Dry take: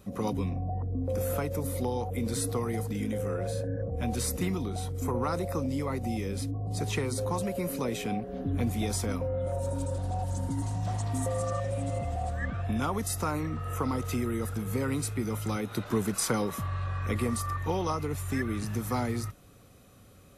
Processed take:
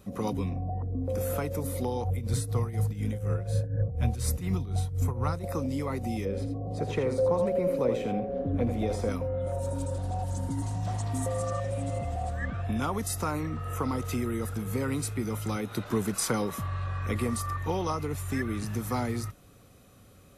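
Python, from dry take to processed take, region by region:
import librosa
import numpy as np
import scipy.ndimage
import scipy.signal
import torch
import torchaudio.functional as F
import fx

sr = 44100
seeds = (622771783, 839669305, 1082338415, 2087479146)

y = fx.chain(x, sr, fx.low_shelf_res(hz=180.0, db=8.0, q=1.5),
    fx.tremolo_shape(shape='triangle', hz=4.1, depth_pct=80), at=(2.04, 5.44))
y = fx.chain(y, sr, fx.lowpass(hz=1600.0, slope=6),
    fx.peak_eq(hz=530.0, db=10.5, octaves=0.42),
    fx.echo_single(ms=83, db=-8.0), at=(6.25, 9.09))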